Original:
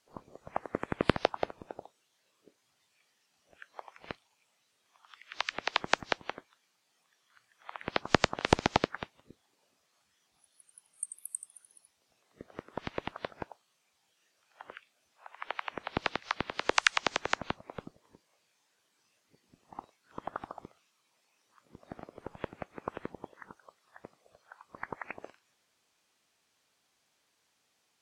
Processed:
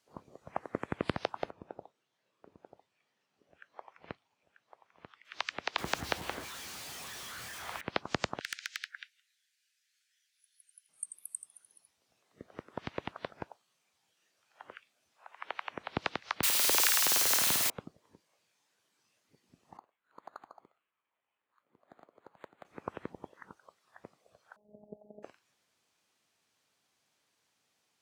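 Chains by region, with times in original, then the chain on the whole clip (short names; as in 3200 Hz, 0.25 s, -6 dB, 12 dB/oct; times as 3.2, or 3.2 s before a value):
1.5–5.25 LPF 1900 Hz 6 dB/oct + echo 0.94 s -9.5 dB
5.78–7.81 zero-crossing step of -36.5 dBFS + bell 62 Hz +8.5 dB 1.2 oct
8.4–10.89 steep high-pass 1500 Hz 72 dB/oct + hard clip -23.5 dBFS
16.43–17.7 switching spikes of -14.5 dBFS + flutter echo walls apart 8.9 m, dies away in 0.75 s
19.77–22.65 HPF 1300 Hz 6 dB/oct + air absorption 390 m + decimation joined by straight lines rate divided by 8×
24.56–25.23 zero-crossing step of -45.5 dBFS + rippled Chebyshev low-pass 720 Hz, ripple 3 dB + robotiser 209 Hz
whole clip: HPF 79 Hz; low shelf 150 Hz +5 dB; limiter -13.5 dBFS; gain -2.5 dB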